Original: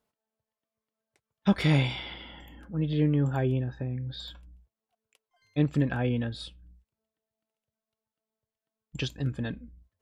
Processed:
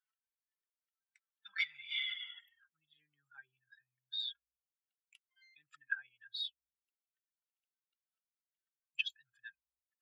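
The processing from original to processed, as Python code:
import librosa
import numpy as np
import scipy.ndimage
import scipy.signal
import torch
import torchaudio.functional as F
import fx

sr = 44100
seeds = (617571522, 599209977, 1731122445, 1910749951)

y = fx.spec_expand(x, sr, power=2.1)
y = scipy.signal.sosfilt(scipy.signal.ellip(4, 1.0, 60, 1400.0, 'highpass', fs=sr, output='sos'), y)
y = F.gain(torch.from_numpy(y), 3.0).numpy()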